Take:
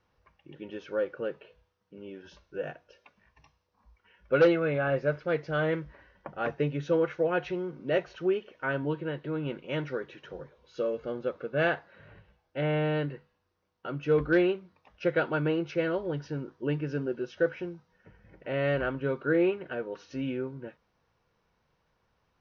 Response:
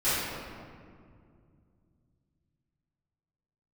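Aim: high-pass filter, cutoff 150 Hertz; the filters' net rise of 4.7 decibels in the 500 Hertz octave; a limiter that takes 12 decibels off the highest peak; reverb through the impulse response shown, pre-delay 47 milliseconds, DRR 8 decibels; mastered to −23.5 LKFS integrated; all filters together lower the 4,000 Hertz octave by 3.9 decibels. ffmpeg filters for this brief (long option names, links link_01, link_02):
-filter_complex "[0:a]highpass=150,equalizer=frequency=500:width_type=o:gain=5.5,equalizer=frequency=4000:width_type=o:gain=-6.5,alimiter=limit=-19dB:level=0:latency=1,asplit=2[link_01][link_02];[1:a]atrim=start_sample=2205,adelay=47[link_03];[link_02][link_03]afir=irnorm=-1:irlink=0,volume=-21.5dB[link_04];[link_01][link_04]amix=inputs=2:normalize=0,volume=6dB"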